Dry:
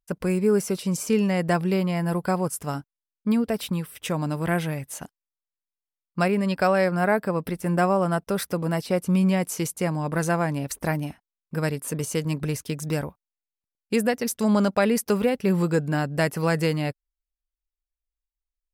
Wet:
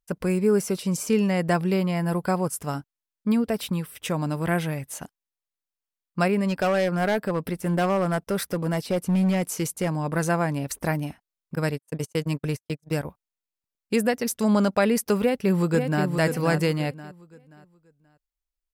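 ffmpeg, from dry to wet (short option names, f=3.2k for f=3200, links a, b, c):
-filter_complex "[0:a]asettb=1/sr,asplit=3[a][b][c];[a]atrim=end=6.454[d];[b]atrim=start=6.45:end=9.93,asetpts=PTS-STARTPTS,afade=t=in:d=0.004:c=qsin,afade=t=out:st=3.476:d=0.004:c=qsin,asoftclip=type=hard:threshold=-18dB[e];[c]atrim=start=9.926[f];[d][e]acrossfade=d=0.004:c1=hsin:c2=qsin[g];[g][f]acrossfade=d=0.004:c1=qsin:c2=hsin,asettb=1/sr,asplit=3[h][i][j];[h]atrim=end=11.554[k];[i]atrim=start=11.55:end=13.05,asetpts=PTS-STARTPTS,afade=t=in:d=0.004:c=qsin,afade=t=out:st=1.496:d=0.004:c=qsin,agate=range=-50dB:threshold=-29dB:ratio=16:release=100:detection=peak[l];[j]atrim=start=13.046[m];[k][l]acrossfade=d=0.004:c1=hsin:c2=qsin[n];[n][m]acrossfade=d=0.004:c1=qsin:c2=hsin,asplit=2[o][p];[p]afade=t=in:st=15.2:d=0.01,afade=t=out:st=16.05:d=0.01,aecho=0:1:530|1060|1590|2120:0.501187|0.150356|0.0451069|0.0135321[q];[o][q]amix=inputs=2:normalize=0"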